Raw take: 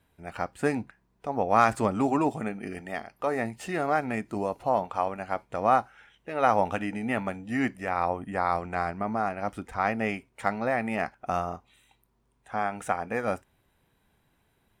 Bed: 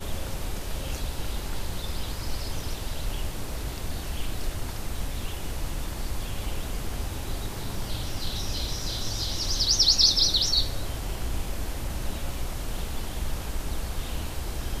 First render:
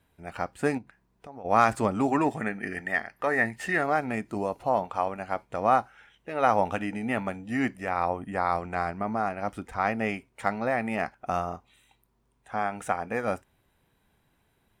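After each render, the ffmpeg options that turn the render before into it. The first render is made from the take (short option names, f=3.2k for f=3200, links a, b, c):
-filter_complex "[0:a]asplit=3[a][b][c];[a]afade=t=out:st=0.77:d=0.02[d];[b]acompressor=threshold=-46dB:ratio=2.5:attack=3.2:release=140:knee=1:detection=peak,afade=t=in:st=0.77:d=0.02,afade=t=out:st=1.44:d=0.02[e];[c]afade=t=in:st=1.44:d=0.02[f];[d][e][f]amix=inputs=3:normalize=0,asettb=1/sr,asplit=3[g][h][i];[g]atrim=end=2.124[j];[h]atrim=start=2.12:end=3.84,asetpts=PTS-STARTPTS,afade=t=in:d=0.004:c=qsin,afade=t=out:st=1.716:d=0.004:c=qsin,equalizer=f=1.8k:w=2.9:g=12.5[k];[i]atrim=start=3.836[l];[j][k]acrossfade=d=0.004:c1=hsin:c2=qsin[m];[m][l]acrossfade=d=0.004:c1=qsin:c2=hsin"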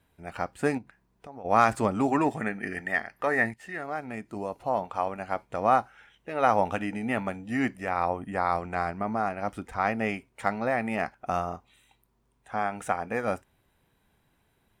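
-filter_complex "[0:a]asplit=2[a][b];[a]atrim=end=3.54,asetpts=PTS-STARTPTS,afade=t=out:st=3.536:d=0.004:c=hsin:silence=0.211349[c];[b]atrim=start=3.54,asetpts=PTS-STARTPTS,afade=t=in:d=1.72:silence=0.211349[d];[c][d]concat=n=2:v=0:a=1"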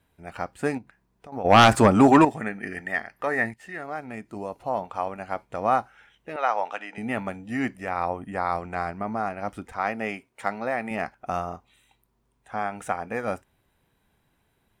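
-filter_complex "[0:a]asettb=1/sr,asplit=3[a][b][c];[a]atrim=end=1.324[d];[b]atrim=start=1.32:end=2.25,asetpts=PTS-STARTPTS,afade=t=in:d=0.004:c=qsin,afade=t=out:st=0.926:d=0.004:c=qsin,aeval=exprs='0.447*sin(PI/2*2.24*val(0)/0.447)':c=same[e];[c]atrim=start=2.246[f];[d][e]acrossfade=d=0.004:c1=hsin:c2=qsin[g];[g][f]acrossfade=d=0.004:c1=qsin:c2=hsin,asettb=1/sr,asplit=3[h][i][j];[h]atrim=end=6.364[k];[i]atrim=start=6.36:end=6.98,asetpts=PTS-STARTPTS,afade=t=in:d=0.004:c=qsin,afade=t=out:st=0.616:d=0.004:c=qsin,highpass=650,lowpass=5.8k[l];[j]atrim=start=6.976[m];[k][l]acrossfade=d=0.004:c1=hsin:c2=qsin[n];[n][m]acrossfade=d=0.004:c1=qsin:c2=hsin,asettb=1/sr,asplit=3[o][p][q];[o]atrim=end=9.724[r];[p]atrim=start=9.72:end=10.91,asetpts=PTS-STARTPTS,afade=t=in:d=0.004:c=qsin,afade=t=out:st=1.186:d=0.004:c=qsin,highpass=f=220:p=1[s];[q]atrim=start=10.906[t];[r][s]acrossfade=d=0.004:c1=hsin:c2=qsin[u];[u][t]acrossfade=d=0.004:c1=qsin:c2=hsin"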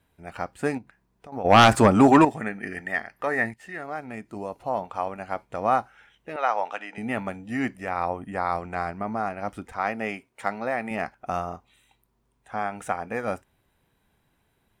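-af anull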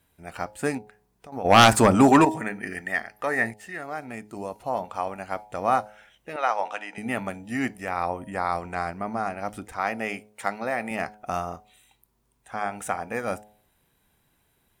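-af "aemphasis=mode=production:type=cd,bandreject=f=105.6:t=h:w=4,bandreject=f=211.2:t=h:w=4,bandreject=f=316.8:t=h:w=4,bandreject=f=422.4:t=h:w=4,bandreject=f=528:t=h:w=4,bandreject=f=633.6:t=h:w=4,bandreject=f=739.2:t=h:w=4,bandreject=f=844.8:t=h:w=4,bandreject=f=950.4:t=h:w=4"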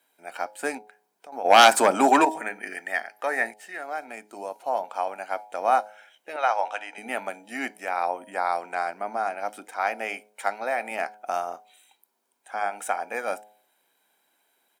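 -af "highpass=f=310:w=0.5412,highpass=f=310:w=1.3066,aecho=1:1:1.3:0.36"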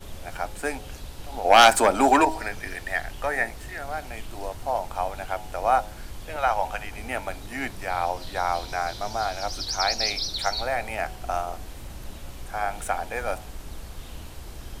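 -filter_complex "[1:a]volume=-7.5dB[a];[0:a][a]amix=inputs=2:normalize=0"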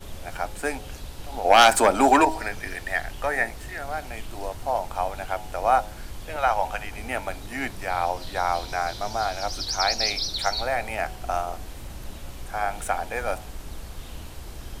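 -af "volume=1dB,alimiter=limit=-3dB:level=0:latency=1"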